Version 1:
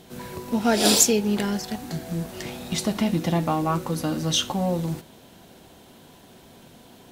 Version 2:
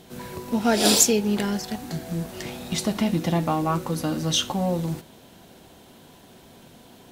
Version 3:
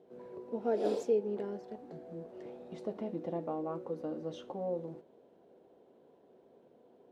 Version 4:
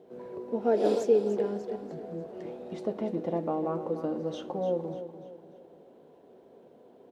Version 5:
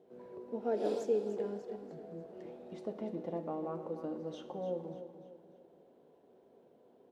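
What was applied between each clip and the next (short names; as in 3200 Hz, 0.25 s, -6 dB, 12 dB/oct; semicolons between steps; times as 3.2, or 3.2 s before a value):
nothing audible
band-pass 460 Hz, Q 2.8; gain -4.5 dB
feedback echo 0.295 s, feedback 42%, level -11 dB; gain +6.5 dB
Schroeder reverb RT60 1.3 s, combs from 29 ms, DRR 13 dB; gain -8.5 dB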